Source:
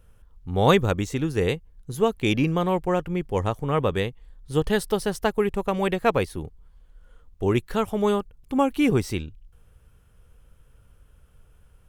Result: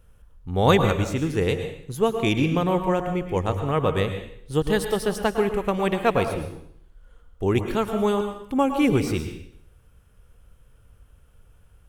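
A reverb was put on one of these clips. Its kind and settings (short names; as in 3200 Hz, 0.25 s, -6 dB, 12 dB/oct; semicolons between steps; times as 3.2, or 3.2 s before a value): plate-style reverb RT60 0.66 s, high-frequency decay 0.95×, pre-delay 95 ms, DRR 6.5 dB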